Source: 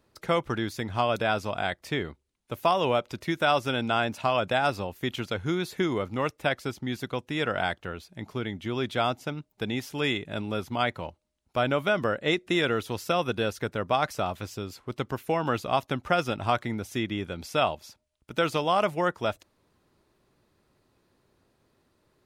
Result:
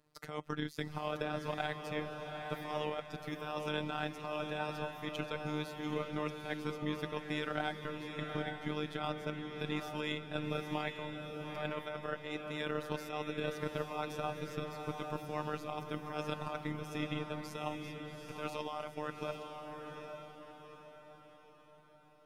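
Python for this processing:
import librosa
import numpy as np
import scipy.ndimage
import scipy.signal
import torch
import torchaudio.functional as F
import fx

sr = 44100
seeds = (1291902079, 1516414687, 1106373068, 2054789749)

y = fx.transient(x, sr, attack_db=5, sustain_db=-5)
y = fx.comb_fb(y, sr, f0_hz=640.0, decay_s=0.26, harmonics='all', damping=0.0, mix_pct=40)
y = fx.over_compress(y, sr, threshold_db=-31.0, ratio=-1.0)
y = y * np.sin(2.0 * np.pi * 40.0 * np.arange(len(y)) / sr)
y = fx.robotise(y, sr, hz=151.0)
y = fx.echo_diffused(y, sr, ms=811, feedback_pct=46, wet_db=-5)
y = F.gain(torch.from_numpy(y), -2.0).numpy()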